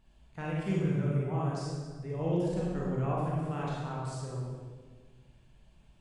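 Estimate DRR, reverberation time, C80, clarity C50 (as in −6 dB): −5.5 dB, 1.5 s, 0.5 dB, −2.5 dB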